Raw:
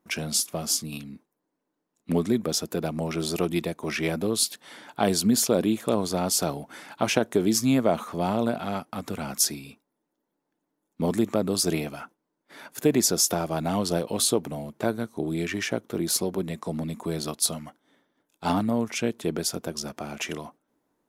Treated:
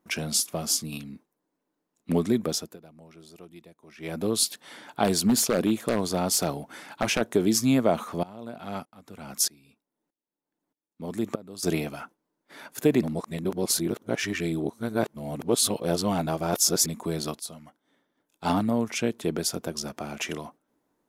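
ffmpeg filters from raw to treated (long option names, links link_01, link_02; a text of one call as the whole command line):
ffmpeg -i in.wav -filter_complex "[0:a]asettb=1/sr,asplit=3[link_01][link_02][link_03];[link_01]atrim=end=5.044[link_04];[link_02]atrim=start=5.04:end=7.21,asetpts=PTS-STARTPTS,afade=type=in:duration=0.004:curve=qsin,afade=type=out:start_time=2.166:duration=0.004:curve=qsin,aeval=exprs='0.178*(abs(mod(val(0)/0.178+3,4)-2)-1)':channel_layout=same[link_05];[link_03]atrim=start=7.206[link_06];[link_04][link_05]acrossfade=duration=0.004:curve1=hsin:curve2=qsin[link_07];[link_07][link_06]acrossfade=duration=0.004:curve1=qsin:curve2=hsin,asettb=1/sr,asplit=3[link_08][link_09][link_10];[link_08]atrim=end=8.234[link_11];[link_09]atrim=start=8.23:end=11.63,asetpts=PTS-STARTPTS,afade=type=in:duration=0.004:curve=qsin,afade=type=out:start_time=3.396:duration=0.004:curve=qsin,aeval=exprs='val(0)*pow(10,-22*if(lt(mod(-1.6*n/s,1),2*abs(-1.6)/1000),1-mod(-1.6*n/s,1)/(2*abs(-1.6)/1000),(mod(-1.6*n/s,1)-2*abs(-1.6)/1000)/(1-2*abs(-1.6)/1000))/20)':channel_layout=same[link_12];[link_10]atrim=start=11.626[link_13];[link_11][link_12]acrossfade=duration=0.004:curve1=hsin:curve2=qsin[link_14];[link_14][link_13]acrossfade=duration=0.004:curve1=qsin:curve2=hsin,asplit=6[link_15][link_16][link_17][link_18][link_19][link_20];[link_15]atrim=end=2.78,asetpts=PTS-STARTPTS,afade=type=out:start_time=2.47:duration=0.31:silence=0.0841395[link_21];[link_16]atrim=start=2.78:end=3.97,asetpts=PTS-STARTPTS,volume=-21.5dB[link_22];[link_17]atrim=start=3.97:end=13.012,asetpts=PTS-STARTPTS,afade=type=in:duration=0.31:silence=0.0841395[link_23];[link_18]atrim=start=13.008:end=16.862,asetpts=PTS-STARTPTS,areverse[link_24];[link_19]atrim=start=16.858:end=17.4,asetpts=PTS-STARTPTS,afade=type=out:start_time=0.538:duration=0.004:curve=hsin:silence=0.199526[link_25];[link_20]atrim=start=17.4,asetpts=PTS-STARTPTS,afade=type=in:duration=1.13:silence=0.199526[link_26];[link_21][link_22][link_23]concat=n=3:v=0:a=1[link_27];[link_27][link_24]acrossfade=duration=0.004:curve1=hsin:curve2=hsin[link_28];[link_25][link_26]concat=n=2:v=0:a=1[link_29];[link_28][link_29]acrossfade=duration=0.004:curve1=hsin:curve2=hsin" out.wav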